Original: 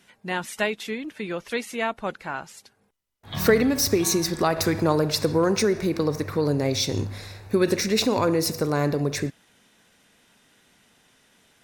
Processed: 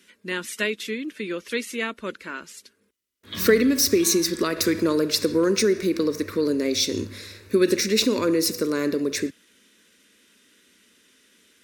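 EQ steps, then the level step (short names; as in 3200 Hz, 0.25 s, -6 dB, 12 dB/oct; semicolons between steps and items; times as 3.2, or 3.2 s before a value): HPF 86 Hz; fixed phaser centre 320 Hz, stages 4; +3.0 dB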